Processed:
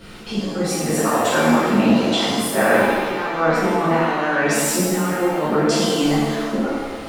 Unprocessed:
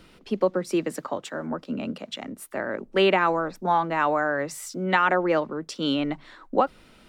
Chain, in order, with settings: compressor with a negative ratio -28 dBFS, ratio -0.5; pitch-shifted reverb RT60 1.4 s, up +7 st, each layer -8 dB, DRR -11 dB

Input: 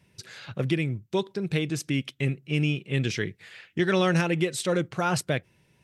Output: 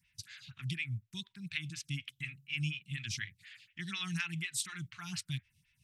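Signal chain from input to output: Chebyshev band-stop 100–2500 Hz, order 2; lamp-driven phase shifter 4.1 Hz

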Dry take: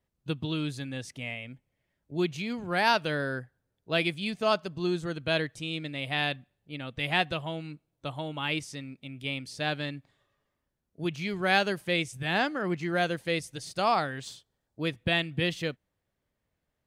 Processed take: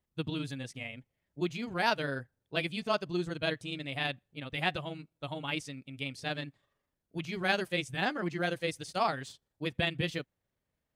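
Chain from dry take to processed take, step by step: granular stretch 0.65×, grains 82 ms; trim -2.5 dB

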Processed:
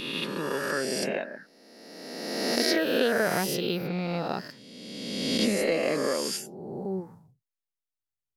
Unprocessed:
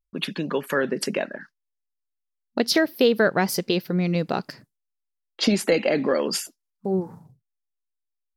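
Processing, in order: reverse spectral sustain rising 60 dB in 1.83 s; trim -9 dB

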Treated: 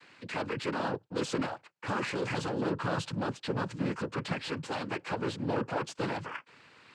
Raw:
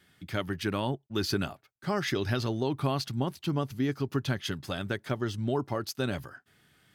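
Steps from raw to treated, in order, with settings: overdrive pedal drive 24 dB, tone 1.4 kHz, clips at -20.5 dBFS; noise-vocoded speech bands 8; trim -3.5 dB

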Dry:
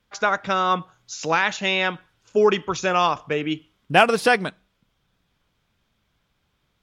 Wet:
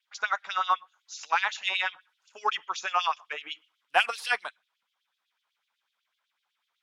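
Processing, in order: LFO high-pass sine 8 Hz 830–3700 Hz; Chebyshev shaper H 7 -39 dB, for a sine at 0.5 dBFS; trim -8.5 dB

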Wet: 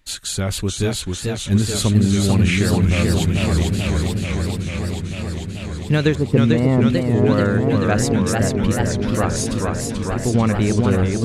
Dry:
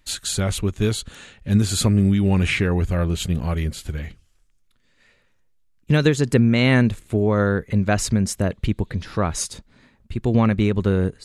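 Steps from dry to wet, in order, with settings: 6.15–6.88 s: Savitzky-Golay filter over 65 samples; modulated delay 440 ms, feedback 79%, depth 170 cents, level -3.5 dB

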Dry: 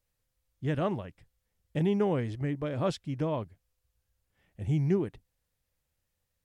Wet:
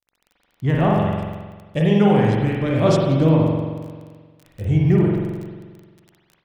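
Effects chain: gate with hold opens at -60 dBFS; treble shelf 5.8 kHz -11 dB; phaser 0.33 Hz, delay 2.1 ms, feedback 42%; 0.95–3.29 s: treble shelf 2.8 kHz +10 dB; crackle 20 per s -41 dBFS; spring tank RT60 1.5 s, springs 44 ms, chirp 55 ms, DRR -2.5 dB; level rider gain up to 11.5 dB; trim -2 dB

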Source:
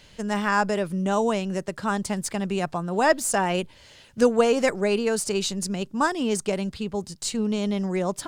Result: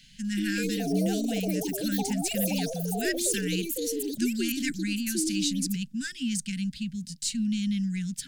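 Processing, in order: Chebyshev band-stop 270–1500 Hz, order 4; static phaser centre 320 Hz, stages 6; ever faster or slower copies 246 ms, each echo +7 st, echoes 3

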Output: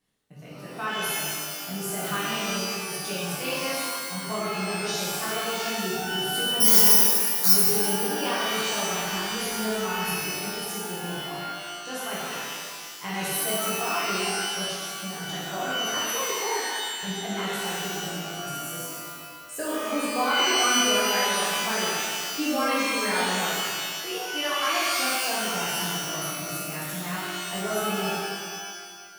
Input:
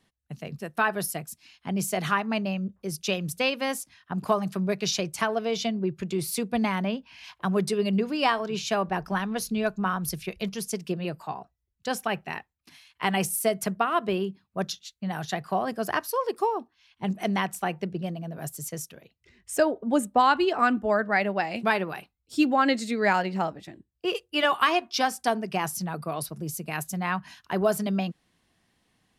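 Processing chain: 6.60–7.54 s: careless resampling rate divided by 8×, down filtered, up zero stuff; treble shelf 9 kHz +10 dB; pitch-shifted reverb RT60 1.8 s, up +12 st, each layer -2 dB, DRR -8.5 dB; trim -13 dB

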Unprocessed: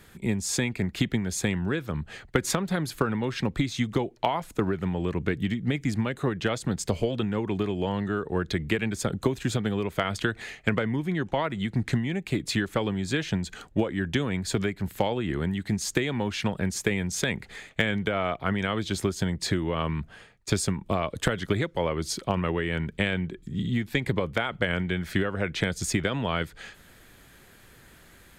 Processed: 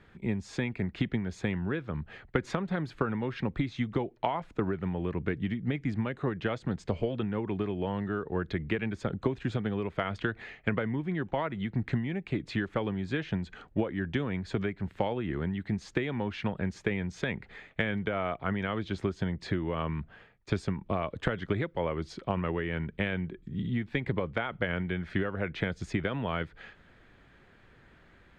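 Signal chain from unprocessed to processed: low-pass 2.6 kHz 12 dB/octave; trim -4 dB

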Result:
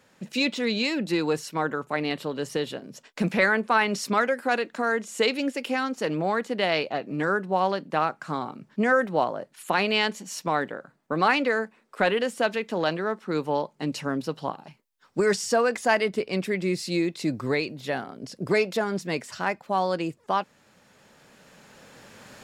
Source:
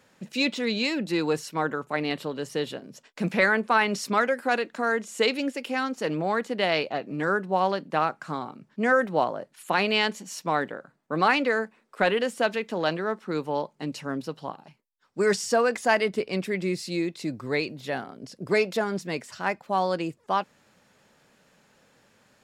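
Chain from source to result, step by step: recorder AGC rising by 7.5 dB/s

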